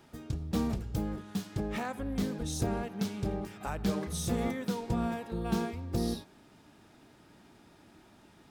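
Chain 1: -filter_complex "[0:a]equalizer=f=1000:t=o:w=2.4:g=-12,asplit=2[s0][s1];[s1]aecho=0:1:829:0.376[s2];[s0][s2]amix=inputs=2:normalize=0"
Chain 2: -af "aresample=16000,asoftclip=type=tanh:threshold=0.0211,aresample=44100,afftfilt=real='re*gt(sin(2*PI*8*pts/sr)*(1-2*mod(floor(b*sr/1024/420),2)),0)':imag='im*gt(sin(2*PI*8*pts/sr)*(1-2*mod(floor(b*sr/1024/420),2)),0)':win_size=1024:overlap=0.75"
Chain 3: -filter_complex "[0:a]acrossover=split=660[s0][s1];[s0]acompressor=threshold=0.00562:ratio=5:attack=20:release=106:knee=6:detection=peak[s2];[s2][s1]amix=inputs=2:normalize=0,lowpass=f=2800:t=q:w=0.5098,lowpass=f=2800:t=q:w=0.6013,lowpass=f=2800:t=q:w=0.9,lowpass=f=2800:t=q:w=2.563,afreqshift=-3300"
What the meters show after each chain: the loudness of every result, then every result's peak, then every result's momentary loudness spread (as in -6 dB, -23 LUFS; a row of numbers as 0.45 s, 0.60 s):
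-36.5 LUFS, -43.0 LUFS, -39.0 LUFS; -19.5 dBFS, -28.5 dBFS, -26.0 dBFS; 9 LU, 21 LU, 18 LU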